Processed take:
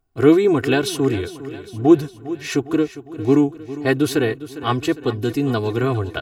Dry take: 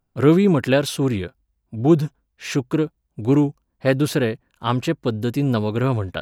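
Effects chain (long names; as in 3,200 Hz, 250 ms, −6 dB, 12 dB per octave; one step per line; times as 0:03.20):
comb filter 2.7 ms, depth 87%
repeating echo 405 ms, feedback 57%, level −15 dB
level −1 dB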